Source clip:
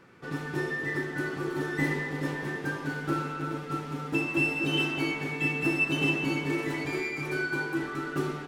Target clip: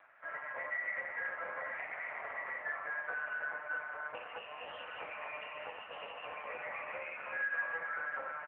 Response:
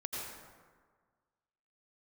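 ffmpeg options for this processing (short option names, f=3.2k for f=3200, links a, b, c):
-filter_complex "[0:a]aeval=exprs='if(lt(val(0),0),0.447*val(0),val(0))':c=same,acompressor=threshold=-30dB:ratio=16,asettb=1/sr,asplit=3[a][b][c];[a]atrim=end=1.724[d];[b]atrim=start=1.72:end=2.17,asetpts=PTS-STARTPTS,afade=t=in:d=0.004:c=qsin,afade=t=out:st=0.446:d=0.004:c=qsin,acrusher=bits=4:dc=4:mix=0:aa=0.000001[e];[c]atrim=start=2.166[f];[d][e]acrossfade=d=0.004:c1=hsin:c2=qsin[g];[g][f]acrossfade=d=0.004:c1=qsin:c2=hsin,highpass=f=490:t=q:w=0.5412,highpass=f=490:t=q:w=1.307,lowpass=f=2.1k:t=q:w=0.5176,lowpass=f=2.1k:t=q:w=0.7071,lowpass=f=2.1k:t=q:w=1.932,afreqshift=160,asplit=5[h][i][j][k][l];[i]adelay=201,afreqshift=30,volume=-19dB[m];[j]adelay=402,afreqshift=60,volume=-25.7dB[n];[k]adelay=603,afreqshift=90,volume=-32.5dB[o];[l]adelay=804,afreqshift=120,volume=-39.2dB[p];[h][m][n][o][p]amix=inputs=5:normalize=0,asplit=2[q][r];[1:a]atrim=start_sample=2205,afade=t=out:st=0.32:d=0.01,atrim=end_sample=14553[s];[r][s]afir=irnorm=-1:irlink=0,volume=-12.5dB[t];[q][t]amix=inputs=2:normalize=0,volume=2dB" -ar 8000 -c:a libopencore_amrnb -b:a 6700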